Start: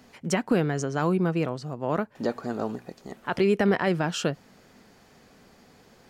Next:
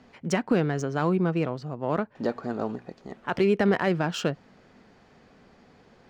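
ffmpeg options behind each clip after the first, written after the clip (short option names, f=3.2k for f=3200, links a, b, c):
-af "adynamicsmooth=sensitivity=4:basefreq=4.4k"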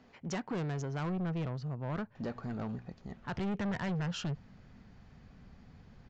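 -af "asubboost=boost=8.5:cutoff=140,aresample=16000,asoftclip=type=tanh:threshold=-25.5dB,aresample=44100,volume=-6dB"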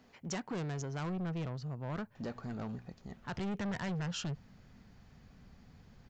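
-af "highshelf=f=6.3k:g=12,volume=-2.5dB"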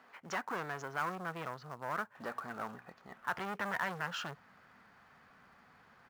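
-filter_complex "[0:a]bandpass=f=1.3k:t=q:w=1.7:csg=0,asplit=2[a][b];[b]acrusher=bits=2:mode=log:mix=0:aa=0.000001,volume=-7dB[c];[a][c]amix=inputs=2:normalize=0,volume=8dB"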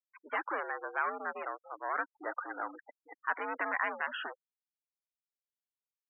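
-af "highpass=f=230:t=q:w=0.5412,highpass=f=230:t=q:w=1.307,lowpass=f=2.9k:t=q:w=0.5176,lowpass=f=2.9k:t=q:w=0.7071,lowpass=f=2.9k:t=q:w=1.932,afreqshift=75,afftfilt=real='re*gte(hypot(re,im),0.01)':imag='im*gte(hypot(re,im),0.01)':win_size=1024:overlap=0.75,volume=3.5dB"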